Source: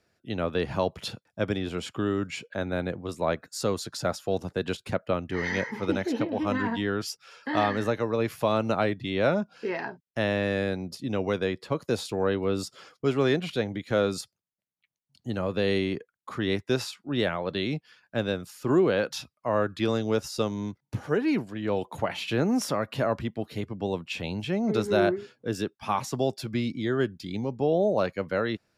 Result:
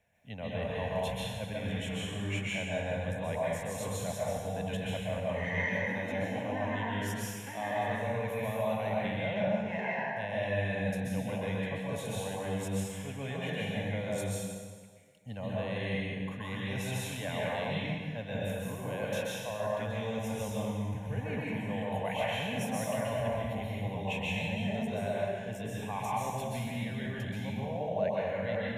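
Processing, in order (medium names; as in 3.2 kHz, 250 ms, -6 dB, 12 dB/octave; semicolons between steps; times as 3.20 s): reverse; compression, threshold -32 dBFS, peak gain reduction 14 dB; reverse; static phaser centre 1.3 kHz, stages 6; plate-style reverb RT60 1.7 s, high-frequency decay 0.85×, pre-delay 115 ms, DRR -6 dB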